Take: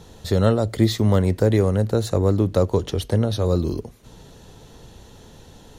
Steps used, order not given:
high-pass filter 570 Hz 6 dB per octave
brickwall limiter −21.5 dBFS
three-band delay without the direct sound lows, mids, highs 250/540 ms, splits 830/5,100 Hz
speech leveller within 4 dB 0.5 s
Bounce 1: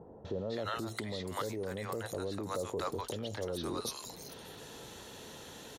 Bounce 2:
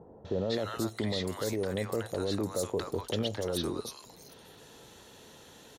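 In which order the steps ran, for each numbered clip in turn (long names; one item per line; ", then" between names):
three-band delay without the direct sound, then brickwall limiter, then speech leveller, then high-pass filter
high-pass filter, then brickwall limiter, then three-band delay without the direct sound, then speech leveller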